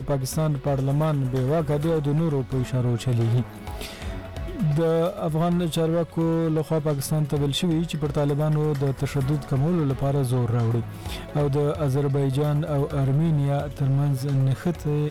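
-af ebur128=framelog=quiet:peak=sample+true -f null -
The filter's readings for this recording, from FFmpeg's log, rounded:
Integrated loudness:
  I:         -24.0 LUFS
  Threshold: -34.2 LUFS
Loudness range:
  LRA:         1.6 LU
  Threshold: -44.3 LUFS
  LRA low:   -25.2 LUFS
  LRA high:  -23.6 LUFS
Sample peak:
  Peak:      -17.7 dBFS
True peak:
  Peak:      -17.1 dBFS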